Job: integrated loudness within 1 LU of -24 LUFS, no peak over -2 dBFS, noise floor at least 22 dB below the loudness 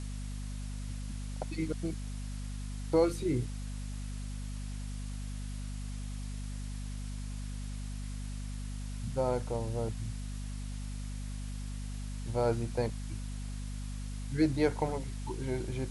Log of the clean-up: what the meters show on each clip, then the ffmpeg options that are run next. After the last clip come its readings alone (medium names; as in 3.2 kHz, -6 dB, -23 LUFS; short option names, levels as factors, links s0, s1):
hum 50 Hz; highest harmonic 250 Hz; hum level -36 dBFS; noise floor -39 dBFS; noise floor target -59 dBFS; loudness -37.0 LUFS; peak level -15.5 dBFS; loudness target -24.0 LUFS
-> -af "bandreject=f=50:t=h:w=6,bandreject=f=100:t=h:w=6,bandreject=f=150:t=h:w=6,bandreject=f=200:t=h:w=6,bandreject=f=250:t=h:w=6"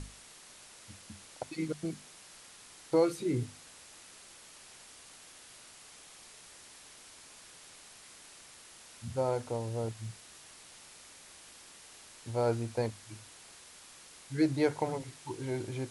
hum not found; noise floor -54 dBFS; noise floor target -56 dBFS
-> -af "afftdn=nr=6:nf=-54"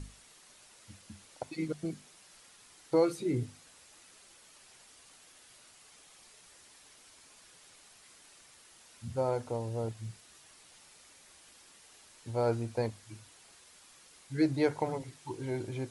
noise floor -59 dBFS; loudness -34.0 LUFS; peak level -16.0 dBFS; loudness target -24.0 LUFS
-> -af "volume=3.16"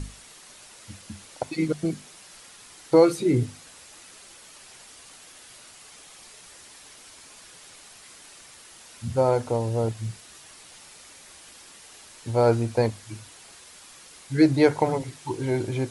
loudness -24.0 LUFS; peak level -6.0 dBFS; noise floor -49 dBFS